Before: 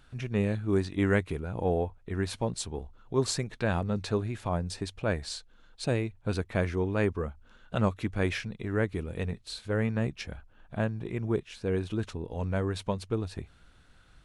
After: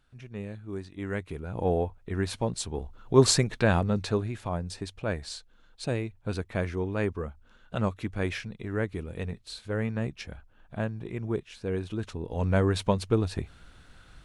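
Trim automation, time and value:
0.99 s -10 dB
1.62 s +1.5 dB
2.64 s +1.5 dB
3.25 s +9 dB
4.52 s -1.5 dB
12.01 s -1.5 dB
12.54 s +6 dB

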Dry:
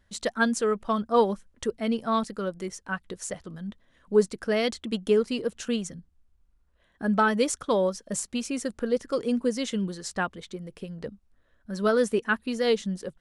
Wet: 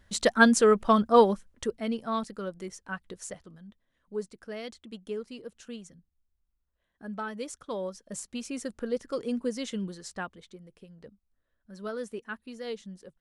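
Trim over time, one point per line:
0.92 s +5 dB
1.99 s -5 dB
3.26 s -5 dB
3.69 s -13.5 dB
7.32 s -13.5 dB
8.58 s -5 dB
9.85 s -5 dB
10.84 s -13 dB

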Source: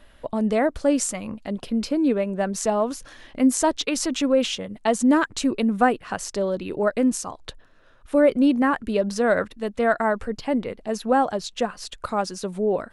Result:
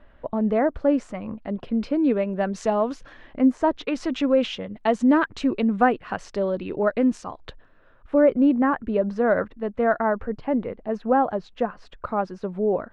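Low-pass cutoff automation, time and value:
1.39 s 1.7 kHz
2.29 s 3.5 kHz
2.91 s 3.5 kHz
3.53 s 1.4 kHz
4.16 s 2.9 kHz
7.44 s 2.9 kHz
8.32 s 1.6 kHz

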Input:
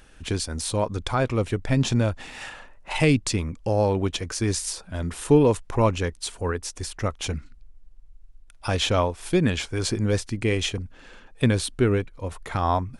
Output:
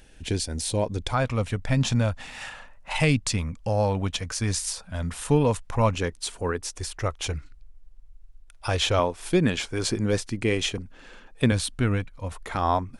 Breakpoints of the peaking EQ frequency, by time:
peaking EQ -13 dB 0.49 oct
1.2 kHz
from 1.12 s 360 Hz
from 5.94 s 65 Hz
from 6.76 s 220 Hz
from 8.99 s 77 Hz
from 11.52 s 390 Hz
from 12.32 s 120 Hz

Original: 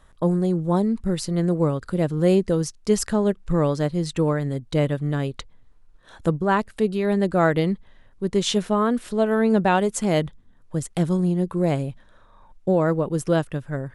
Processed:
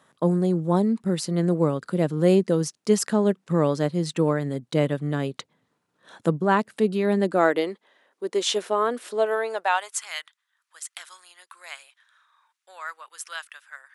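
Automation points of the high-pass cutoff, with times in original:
high-pass 24 dB/octave
7.02 s 150 Hz
7.69 s 340 Hz
9.17 s 340 Hz
10.09 s 1.3 kHz

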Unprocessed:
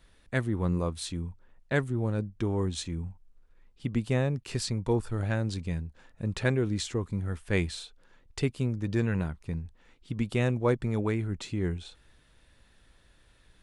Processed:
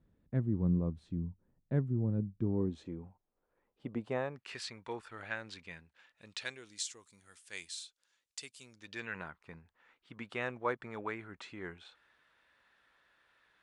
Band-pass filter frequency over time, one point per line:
band-pass filter, Q 1.1
2.44 s 170 Hz
3.07 s 630 Hz
4.00 s 630 Hz
4.54 s 2 kHz
5.83 s 2 kHz
6.80 s 7 kHz
8.59 s 7 kHz
9.25 s 1.4 kHz

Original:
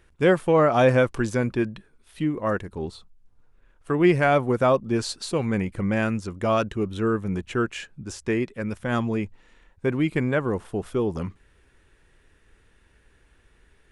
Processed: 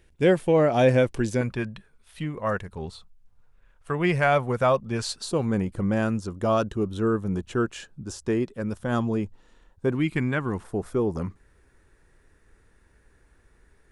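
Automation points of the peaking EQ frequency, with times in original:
peaking EQ -10 dB 0.74 oct
1.2 kHz
from 1.41 s 310 Hz
from 5.21 s 2.2 kHz
from 9.95 s 520 Hz
from 10.63 s 3 kHz

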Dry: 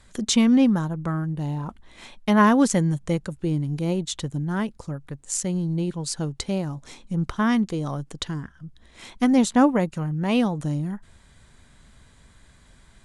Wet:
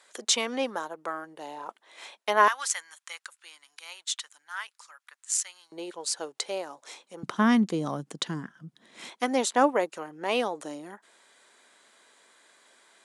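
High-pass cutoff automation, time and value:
high-pass 24 dB/octave
440 Hz
from 2.48 s 1.2 kHz
from 5.72 s 440 Hz
from 7.23 s 180 Hz
from 9.09 s 370 Hz

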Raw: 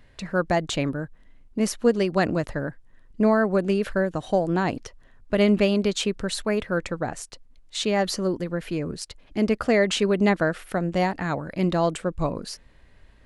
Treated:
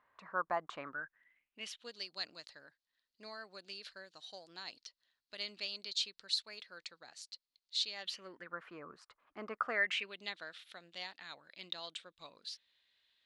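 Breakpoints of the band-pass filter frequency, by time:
band-pass filter, Q 4.7
0.72 s 1.1 kHz
2.00 s 4.3 kHz
7.92 s 4.3 kHz
8.58 s 1.2 kHz
9.67 s 1.2 kHz
10.17 s 3.7 kHz

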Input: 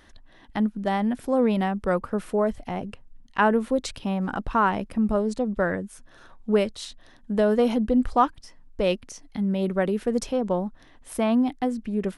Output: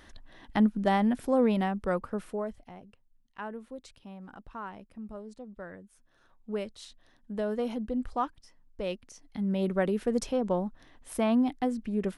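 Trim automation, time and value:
0.76 s +0.5 dB
2.22 s -7 dB
2.84 s -19 dB
5.69 s -19 dB
6.84 s -10.5 dB
9.06 s -10.5 dB
9.56 s -3.5 dB

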